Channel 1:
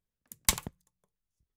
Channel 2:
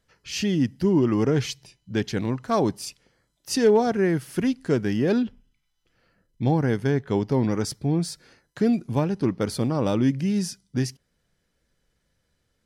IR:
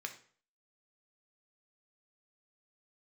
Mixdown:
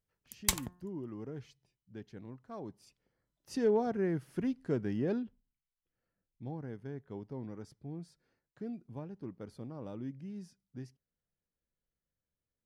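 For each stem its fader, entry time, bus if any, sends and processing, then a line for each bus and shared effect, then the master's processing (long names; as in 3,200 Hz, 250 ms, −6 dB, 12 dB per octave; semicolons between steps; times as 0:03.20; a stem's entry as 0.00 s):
−3.5 dB, 0.00 s, no send, hum removal 178.6 Hz, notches 10
0:02.64 −21.5 dB → 0:03.36 −10 dB → 0:05.09 −10 dB → 0:05.39 −20 dB, 0.00 s, no send, high-shelf EQ 2,100 Hz −11 dB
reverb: not used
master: no processing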